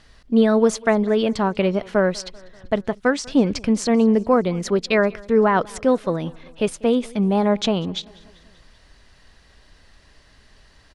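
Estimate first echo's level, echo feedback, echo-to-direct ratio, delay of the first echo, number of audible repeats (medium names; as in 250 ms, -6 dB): -24.0 dB, 59%, -22.0 dB, 194 ms, 3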